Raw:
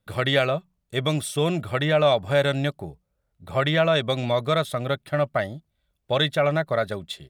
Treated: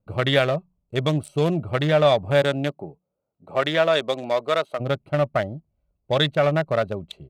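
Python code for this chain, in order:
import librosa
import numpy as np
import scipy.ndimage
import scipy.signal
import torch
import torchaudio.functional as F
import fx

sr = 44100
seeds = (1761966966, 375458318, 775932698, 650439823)

y = fx.wiener(x, sr, points=25)
y = fx.highpass(y, sr, hz=fx.line((2.41, 160.0), (4.79, 440.0)), slope=12, at=(2.41, 4.79), fade=0.02)
y = y * librosa.db_to_amplitude(2.5)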